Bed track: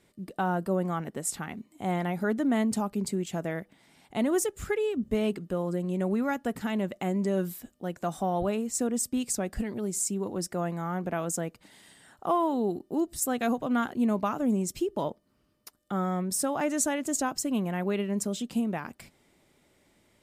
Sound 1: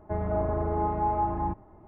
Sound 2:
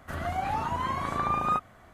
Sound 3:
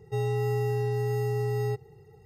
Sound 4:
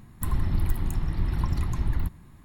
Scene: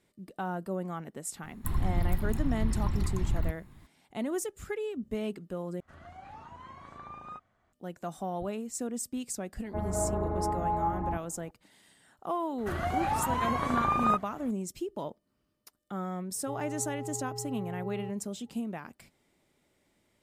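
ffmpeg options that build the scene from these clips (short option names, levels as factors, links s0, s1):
-filter_complex "[2:a]asplit=2[s0][s1];[0:a]volume=0.473[s2];[s0]lowpass=7800[s3];[3:a]lowpass=f=950:t=q:w=3.4[s4];[s2]asplit=2[s5][s6];[s5]atrim=end=5.804[s7];[s3]atrim=end=1.93,asetpts=PTS-STARTPTS,volume=0.126[s8];[s6]atrim=start=7.726[s9];[4:a]atrim=end=2.44,asetpts=PTS-STARTPTS,volume=0.668,afade=t=in:d=0.004:c=hsin,afade=t=out:st=2.436:d=0.004:c=hsin,adelay=1430[s10];[1:a]atrim=end=1.87,asetpts=PTS-STARTPTS,volume=0.668,afade=t=in:d=0.004:c=hsin,afade=t=out:st=1.866:d=0.004:c=hsin,adelay=9640[s11];[s1]atrim=end=1.93,asetpts=PTS-STARTPTS,afade=t=in:d=0.004:c=hsin,afade=t=out:st=1.926:d=0.004:c=hsin,adelay=12580[s12];[s4]atrim=end=2.25,asetpts=PTS-STARTPTS,volume=0.2,afade=t=in:d=0.004:c=hsin,afade=t=out:st=2.246:d=0.004:c=hsin,adelay=16350[s13];[s7][s8]acrossfade=d=0.004:c1=hsin:c2=hsin[s14];[s14][s9]acrossfade=d=0.004:c1=hsin:c2=hsin[s15];[s15][s10][s11][s12][s13]amix=inputs=5:normalize=0"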